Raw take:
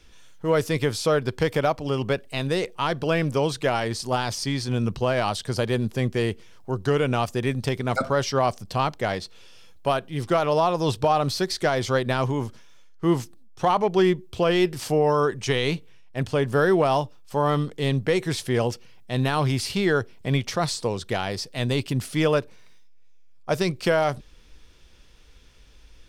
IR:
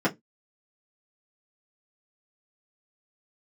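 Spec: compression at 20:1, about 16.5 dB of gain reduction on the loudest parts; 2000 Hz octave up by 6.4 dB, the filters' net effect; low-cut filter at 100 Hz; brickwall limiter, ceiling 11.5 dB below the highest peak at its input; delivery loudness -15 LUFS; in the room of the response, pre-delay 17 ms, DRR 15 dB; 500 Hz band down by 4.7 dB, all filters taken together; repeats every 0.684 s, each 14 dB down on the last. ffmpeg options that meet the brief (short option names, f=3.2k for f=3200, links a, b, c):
-filter_complex "[0:a]highpass=100,equalizer=f=500:t=o:g=-6.5,equalizer=f=2k:t=o:g=8.5,acompressor=threshold=-33dB:ratio=20,alimiter=level_in=5dB:limit=-24dB:level=0:latency=1,volume=-5dB,aecho=1:1:684|1368:0.2|0.0399,asplit=2[a][b];[1:a]atrim=start_sample=2205,adelay=17[c];[b][c]afir=irnorm=-1:irlink=0,volume=-28dB[d];[a][d]amix=inputs=2:normalize=0,volume=25.5dB"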